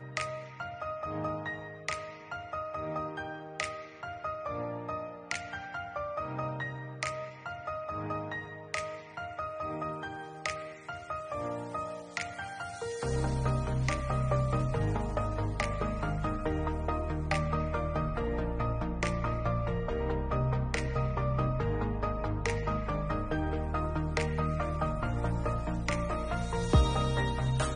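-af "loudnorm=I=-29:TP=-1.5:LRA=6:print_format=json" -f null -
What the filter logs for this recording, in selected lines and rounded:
"input_i" : "-33.5",
"input_tp" : "-12.6",
"input_lra" : "6.8",
"input_thresh" : "-43.5",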